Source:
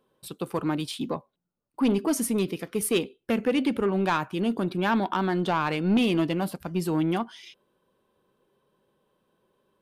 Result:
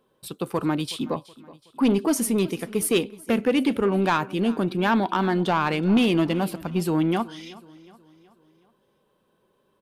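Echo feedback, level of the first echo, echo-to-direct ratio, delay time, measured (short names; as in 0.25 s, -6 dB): 47%, -20.0 dB, -19.0 dB, 0.372 s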